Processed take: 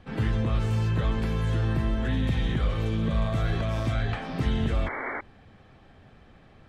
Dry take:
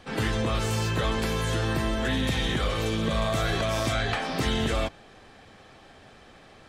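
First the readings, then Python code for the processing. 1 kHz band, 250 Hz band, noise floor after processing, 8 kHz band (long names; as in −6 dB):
−5.0 dB, −0.5 dB, −54 dBFS, below −10 dB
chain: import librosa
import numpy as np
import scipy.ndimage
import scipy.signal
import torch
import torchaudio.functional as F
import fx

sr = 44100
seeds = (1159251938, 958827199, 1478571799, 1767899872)

y = fx.bass_treble(x, sr, bass_db=10, treble_db=-10)
y = fx.spec_paint(y, sr, seeds[0], shape='noise', start_s=4.86, length_s=0.35, low_hz=230.0, high_hz=2300.0, level_db=-27.0)
y = y * librosa.db_to_amplitude(-6.0)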